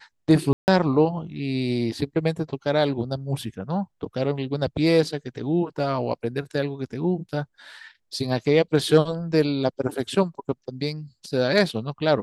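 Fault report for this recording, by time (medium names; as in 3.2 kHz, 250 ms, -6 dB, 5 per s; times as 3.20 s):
0.53–0.68 s: dropout 149 ms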